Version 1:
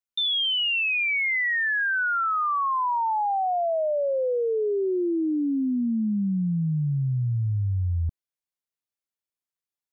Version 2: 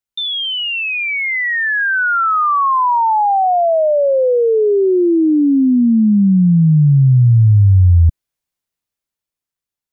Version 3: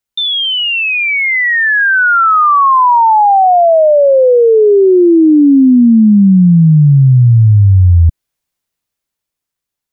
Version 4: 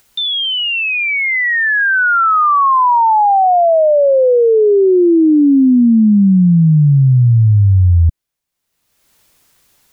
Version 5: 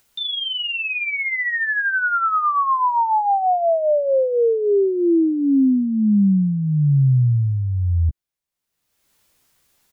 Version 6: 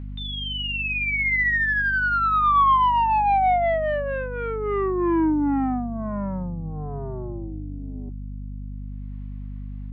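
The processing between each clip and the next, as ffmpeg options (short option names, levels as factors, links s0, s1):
-af "lowshelf=f=160:g=7.5,dynaudnorm=f=390:g=9:m=2.24,volume=1.58"
-af "alimiter=limit=0.376:level=0:latency=1:release=128,volume=2"
-af "acompressor=mode=upward:threshold=0.0355:ratio=2.5,volume=0.708"
-filter_complex "[0:a]asplit=2[s0][s1];[s1]adelay=15,volume=0.398[s2];[s0][s2]amix=inputs=2:normalize=0,volume=0.376"
-af "aeval=exprs='(tanh(11.2*val(0)+0.1)-tanh(0.1))/11.2':c=same,highpass=f=200:w=0.5412,highpass=f=200:w=1.3066,equalizer=f=220:t=q:w=4:g=-7,equalizer=f=310:t=q:w=4:g=5,equalizer=f=490:t=q:w=4:g=-10,equalizer=f=750:t=q:w=4:g=5,equalizer=f=1100:t=q:w=4:g=7,equalizer=f=2000:t=q:w=4:g=4,lowpass=f=2900:w=0.5412,lowpass=f=2900:w=1.3066,aeval=exprs='val(0)+0.0251*(sin(2*PI*50*n/s)+sin(2*PI*2*50*n/s)/2+sin(2*PI*3*50*n/s)/3+sin(2*PI*4*50*n/s)/4+sin(2*PI*5*50*n/s)/5)':c=same"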